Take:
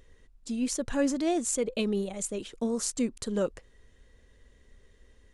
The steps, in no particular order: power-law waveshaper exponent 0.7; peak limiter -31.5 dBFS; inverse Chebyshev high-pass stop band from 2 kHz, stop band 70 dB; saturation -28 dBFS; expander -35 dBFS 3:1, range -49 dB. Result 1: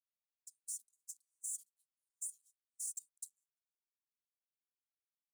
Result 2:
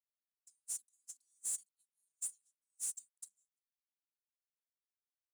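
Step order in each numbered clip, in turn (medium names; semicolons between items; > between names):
power-law waveshaper > inverse Chebyshev high-pass > expander > peak limiter > saturation; inverse Chebyshev high-pass > saturation > power-law waveshaper > expander > peak limiter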